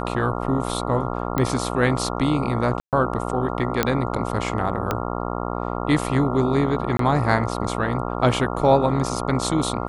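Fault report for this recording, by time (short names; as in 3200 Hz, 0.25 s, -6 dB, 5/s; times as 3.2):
buzz 60 Hz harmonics 23 -27 dBFS
1.38 pop -9 dBFS
2.8–2.93 gap 0.128 s
3.83 pop -4 dBFS
4.91 pop -8 dBFS
6.97–6.99 gap 23 ms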